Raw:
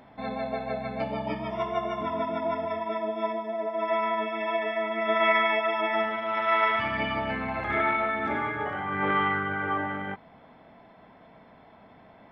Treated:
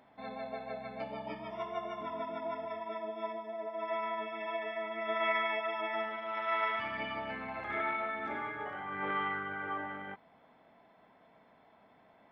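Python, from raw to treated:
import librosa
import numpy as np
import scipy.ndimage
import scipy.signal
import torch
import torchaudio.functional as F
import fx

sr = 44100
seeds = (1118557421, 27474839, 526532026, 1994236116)

y = fx.low_shelf(x, sr, hz=180.0, db=-9.5)
y = y * 10.0 ** (-8.5 / 20.0)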